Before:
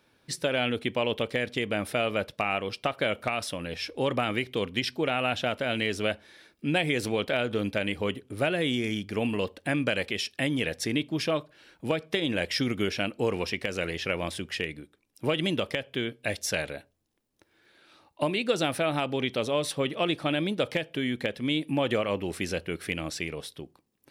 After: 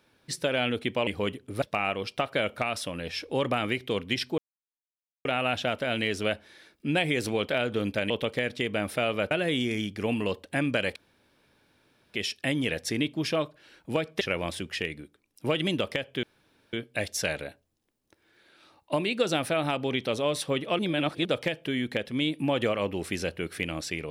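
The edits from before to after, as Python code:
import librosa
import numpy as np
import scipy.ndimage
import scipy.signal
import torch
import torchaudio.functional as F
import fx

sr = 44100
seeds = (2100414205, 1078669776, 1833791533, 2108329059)

y = fx.edit(x, sr, fx.swap(start_s=1.07, length_s=1.21, other_s=7.89, other_length_s=0.55),
    fx.insert_silence(at_s=5.04, length_s=0.87),
    fx.insert_room_tone(at_s=10.09, length_s=1.18),
    fx.cut(start_s=12.16, length_s=1.84),
    fx.insert_room_tone(at_s=16.02, length_s=0.5),
    fx.reverse_span(start_s=20.08, length_s=0.46), tone=tone)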